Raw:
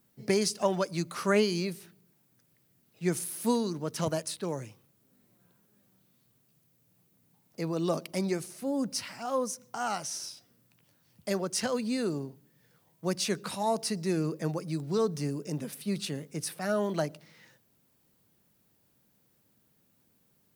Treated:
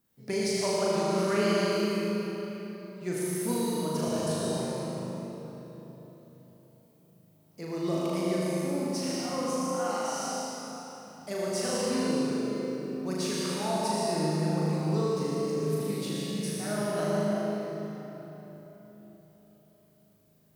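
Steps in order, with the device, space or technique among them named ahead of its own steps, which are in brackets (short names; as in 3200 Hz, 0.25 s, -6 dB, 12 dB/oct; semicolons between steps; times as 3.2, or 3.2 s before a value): tunnel (flutter echo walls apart 6.6 m, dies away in 0.95 s; reverb RT60 4.1 s, pre-delay 77 ms, DRR -3.5 dB); gain -7 dB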